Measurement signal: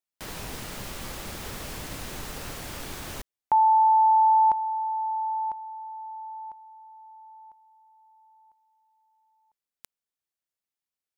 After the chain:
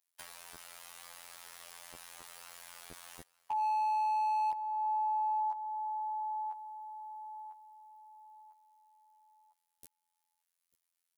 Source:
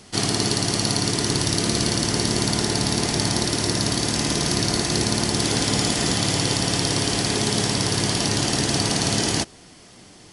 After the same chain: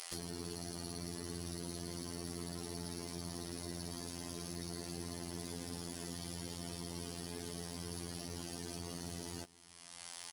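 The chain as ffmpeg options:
ffmpeg -i in.wav -filter_complex "[0:a]acrossover=split=570[link_01][link_02];[link_01]acrusher=bits=4:mix=0:aa=0.000001[link_03];[link_02]alimiter=limit=-13.5dB:level=0:latency=1:release=389[link_04];[link_03][link_04]amix=inputs=2:normalize=0,highshelf=frequency=5500:gain=3.5,afftfilt=real='hypot(re,im)*cos(PI*b)':imag='0':win_size=2048:overlap=0.75,acompressor=threshold=-36dB:ratio=5:attack=1.1:release=475:knee=6:detection=rms,volume=34.5dB,asoftclip=hard,volume=-34.5dB,equalizer=frequency=10000:width_type=o:width=0.23:gain=6.5,aecho=1:1:893:0.0794,volume=6dB" out.wav

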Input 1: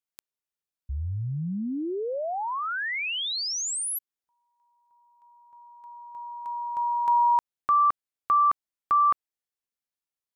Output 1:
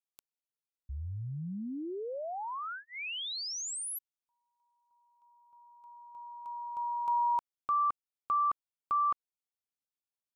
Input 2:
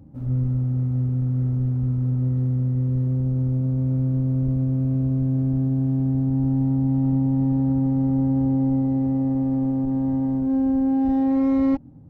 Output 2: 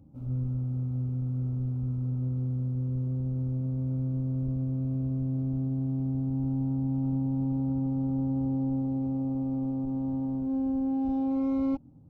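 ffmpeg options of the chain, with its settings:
ffmpeg -i in.wav -af "asuperstop=centerf=1800:order=4:qfactor=2.7,volume=-8dB" out.wav

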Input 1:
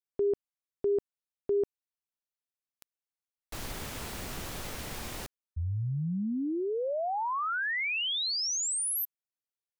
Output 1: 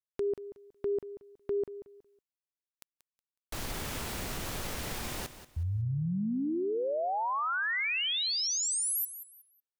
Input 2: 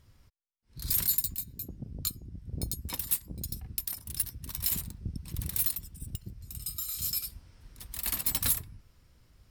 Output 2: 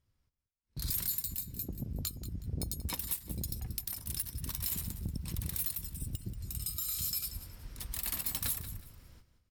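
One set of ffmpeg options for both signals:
ffmpeg -i in.wav -filter_complex "[0:a]agate=range=-22dB:threshold=-50dB:ratio=16:release=394:detection=rms,acompressor=threshold=-36dB:ratio=3:attack=1.4:release=159:knee=6:detection=rms,asplit=2[link_01][link_02];[link_02]aecho=0:1:184|368|552:0.224|0.0582|0.0151[link_03];[link_01][link_03]amix=inputs=2:normalize=0,volume=5dB" out.wav

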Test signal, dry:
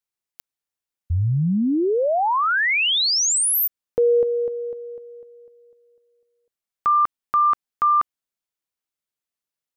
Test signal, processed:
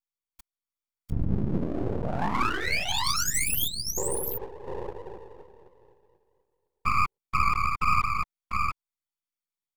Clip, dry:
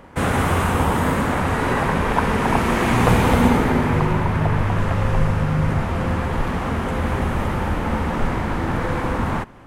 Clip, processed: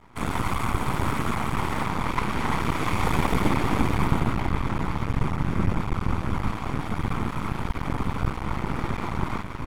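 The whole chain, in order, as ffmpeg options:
ffmpeg -i in.wav -filter_complex "[0:a]asplit=2[link_01][link_02];[link_02]aecho=0:1:697:0.631[link_03];[link_01][link_03]amix=inputs=2:normalize=0,afftfilt=real='hypot(re,im)*cos(2*PI*random(0))':imag='hypot(re,im)*sin(2*PI*random(1))':win_size=512:overlap=0.75,aecho=1:1:0.9:0.61,aeval=exprs='max(val(0),0)':channel_layout=same" out.wav

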